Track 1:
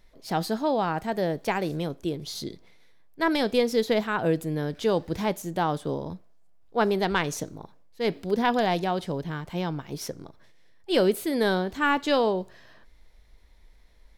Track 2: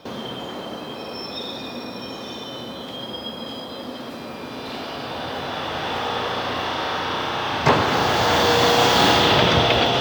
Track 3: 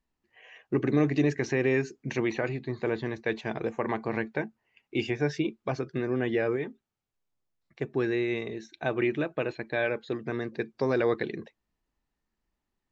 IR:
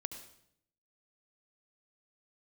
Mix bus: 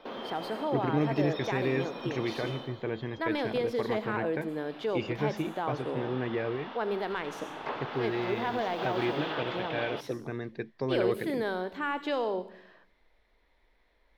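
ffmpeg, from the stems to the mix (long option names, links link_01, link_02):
-filter_complex "[0:a]volume=-4dB,asplit=2[link_01][link_02];[link_02]volume=-9.5dB[link_03];[1:a]volume=-7dB,afade=type=out:start_time=2.53:duration=0.27:silence=0.251189,asplit=2[link_04][link_05];[link_05]volume=-11.5dB[link_06];[2:a]lowpass=6100,equalizer=frequency=78:width_type=o:width=2.1:gain=6,volume=-5.5dB[link_07];[link_01][link_04]amix=inputs=2:normalize=0,highpass=270,lowpass=3300,alimiter=level_in=1.5dB:limit=-24dB:level=0:latency=1:release=84,volume=-1.5dB,volume=0dB[link_08];[3:a]atrim=start_sample=2205[link_09];[link_03][link_06]amix=inputs=2:normalize=0[link_10];[link_10][link_09]afir=irnorm=-1:irlink=0[link_11];[link_07][link_08][link_11]amix=inputs=3:normalize=0"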